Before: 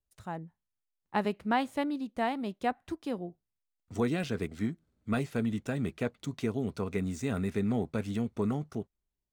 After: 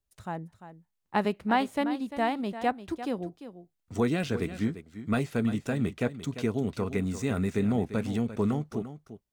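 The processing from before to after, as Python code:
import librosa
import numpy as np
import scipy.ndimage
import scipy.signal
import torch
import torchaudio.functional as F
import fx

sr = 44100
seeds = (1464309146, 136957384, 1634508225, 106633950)

y = x + 10.0 ** (-12.5 / 20.0) * np.pad(x, (int(346 * sr / 1000.0), 0))[:len(x)]
y = y * 10.0 ** (3.0 / 20.0)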